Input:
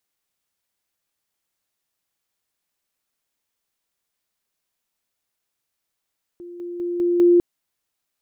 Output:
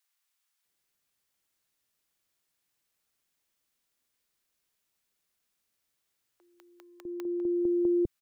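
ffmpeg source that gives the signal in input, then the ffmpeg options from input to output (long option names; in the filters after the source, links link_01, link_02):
-f lavfi -i "aevalsrc='pow(10,(-34.5+6*floor(t/0.2))/20)*sin(2*PI*349*t)':duration=1:sample_rate=44100"
-filter_complex "[0:a]acrossover=split=150[link_01][link_02];[link_02]acompressor=threshold=-26dB:ratio=6[link_03];[link_01][link_03]amix=inputs=2:normalize=0,acrossover=split=780[link_04][link_05];[link_04]adelay=650[link_06];[link_06][link_05]amix=inputs=2:normalize=0"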